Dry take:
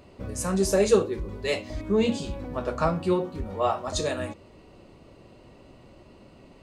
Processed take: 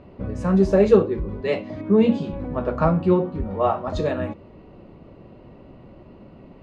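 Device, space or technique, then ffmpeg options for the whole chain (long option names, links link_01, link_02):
phone in a pocket: -filter_complex "[0:a]lowpass=3500,equalizer=frequency=180:width_type=o:width=0.93:gain=4,highshelf=frequency=2300:gain=-10.5,asettb=1/sr,asplit=3[link_01][link_02][link_03];[link_01]atrim=end=1.414[link_04];[link_02]atrim=start=1.41:end=2.33,asetpts=PTS-STARTPTS,afade=type=in:duration=0.004:curve=qsin,afade=type=out:start_time=0.916:duration=0.004:curve=qsin,highpass=frequency=110:width=0.5412,highpass=frequency=110:width=1.3066[link_05];[link_03]atrim=start=2.326[link_06];[link_04][link_05]acrossfade=duration=0.004:curve1=hsin:curve2=qsin[link_07];[link_07][link_06]acrossfade=duration=0.004:curve1=qsin:curve2=hsin,volume=5dB"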